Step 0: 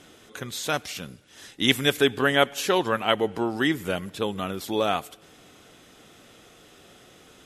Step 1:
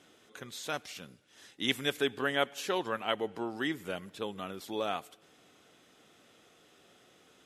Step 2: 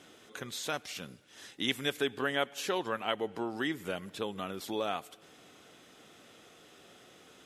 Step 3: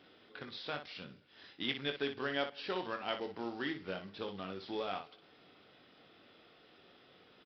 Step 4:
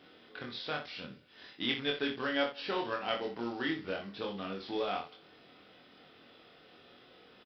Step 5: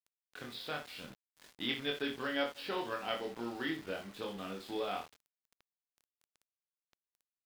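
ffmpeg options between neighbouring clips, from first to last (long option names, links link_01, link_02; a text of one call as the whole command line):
ffmpeg -i in.wav -af "highpass=frequency=170:poles=1,highshelf=frequency=9900:gain=-5,volume=-9dB" out.wav
ffmpeg -i in.wav -af "acompressor=threshold=-43dB:ratio=1.5,volume=5dB" out.wav
ffmpeg -i in.wav -af "aresample=11025,acrusher=bits=4:mode=log:mix=0:aa=0.000001,aresample=44100,aecho=1:1:21|60:0.422|0.355,volume=-6dB" out.wav
ffmpeg -i in.wav -filter_complex "[0:a]asplit=2[link_01][link_02];[link_02]adelay=25,volume=-3dB[link_03];[link_01][link_03]amix=inputs=2:normalize=0,volume=2dB" out.wav
ffmpeg -i in.wav -af "aeval=exprs='val(0)*gte(abs(val(0)),0.00447)':channel_layout=same,volume=-3dB" out.wav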